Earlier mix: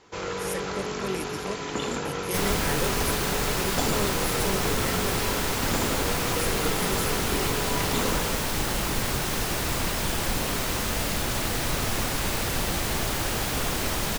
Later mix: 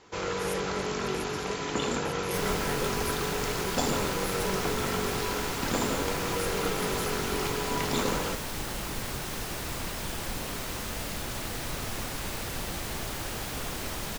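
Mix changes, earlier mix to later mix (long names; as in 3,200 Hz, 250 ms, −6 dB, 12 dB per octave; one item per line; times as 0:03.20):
speech −5.5 dB
second sound −7.5 dB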